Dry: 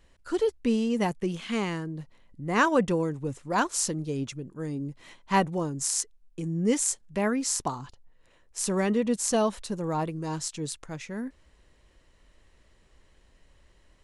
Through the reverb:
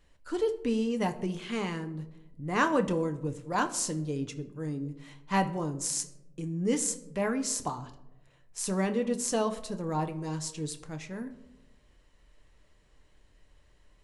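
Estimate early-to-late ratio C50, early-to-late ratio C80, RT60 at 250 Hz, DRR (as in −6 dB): 14.5 dB, 17.0 dB, 1.2 s, 6.5 dB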